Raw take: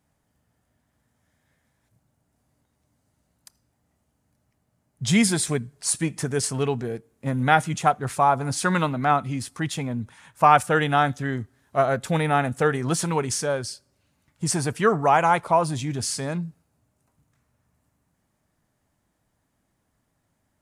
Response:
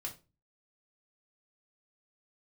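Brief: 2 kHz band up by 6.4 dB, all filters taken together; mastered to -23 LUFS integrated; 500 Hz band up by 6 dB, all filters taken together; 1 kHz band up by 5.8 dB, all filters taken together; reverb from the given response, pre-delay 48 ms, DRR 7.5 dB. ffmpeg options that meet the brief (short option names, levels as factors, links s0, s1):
-filter_complex "[0:a]equalizer=f=500:t=o:g=6,equalizer=f=1000:t=o:g=4,equalizer=f=2000:t=o:g=6.5,asplit=2[s0][s1];[1:a]atrim=start_sample=2205,adelay=48[s2];[s1][s2]afir=irnorm=-1:irlink=0,volume=0.501[s3];[s0][s3]amix=inputs=2:normalize=0,volume=0.531"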